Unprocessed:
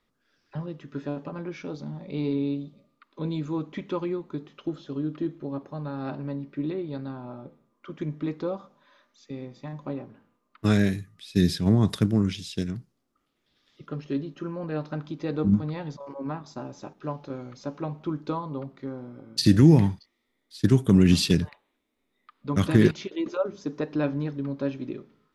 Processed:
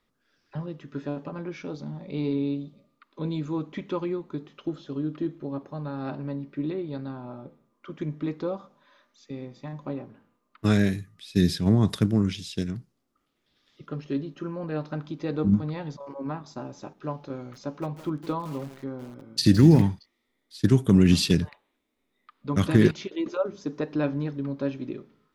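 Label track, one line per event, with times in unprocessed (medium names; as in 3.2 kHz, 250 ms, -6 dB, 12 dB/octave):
17.370000	19.820000	bit-crushed delay 163 ms, feedback 35%, word length 6-bit, level -12.5 dB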